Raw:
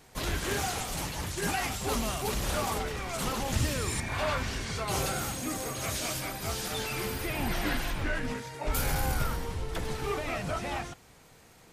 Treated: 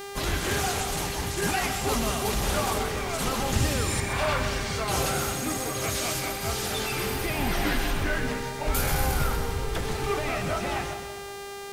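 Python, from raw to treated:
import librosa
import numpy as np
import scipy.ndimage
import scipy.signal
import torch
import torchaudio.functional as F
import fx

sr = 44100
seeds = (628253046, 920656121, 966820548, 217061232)

y = fx.echo_split(x, sr, split_hz=840.0, low_ms=188, high_ms=128, feedback_pct=52, wet_db=-9.0)
y = fx.dmg_buzz(y, sr, base_hz=400.0, harmonics=39, level_db=-42.0, tilt_db=-5, odd_only=False)
y = y * 10.0 ** (3.5 / 20.0)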